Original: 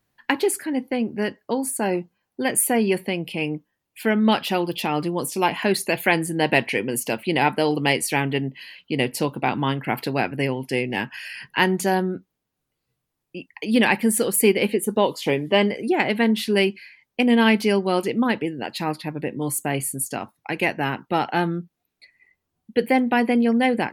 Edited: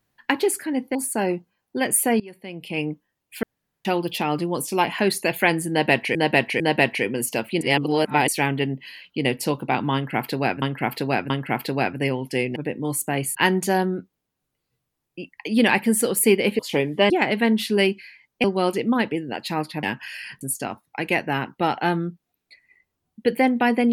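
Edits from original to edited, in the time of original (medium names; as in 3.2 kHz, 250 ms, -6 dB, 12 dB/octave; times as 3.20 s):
0.95–1.59 s: delete
2.84–3.44 s: fade in quadratic, from -21 dB
4.07–4.49 s: room tone
6.34–6.79 s: loop, 3 plays
7.35–8.02 s: reverse
9.68–10.36 s: loop, 3 plays
10.94–11.52 s: swap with 19.13–19.92 s
14.76–15.12 s: delete
15.63–15.88 s: delete
17.22–17.74 s: delete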